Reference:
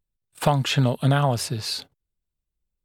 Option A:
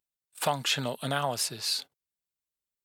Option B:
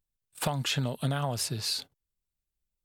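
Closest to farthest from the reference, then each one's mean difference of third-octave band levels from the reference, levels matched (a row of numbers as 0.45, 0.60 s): B, A; 3.5, 5.5 dB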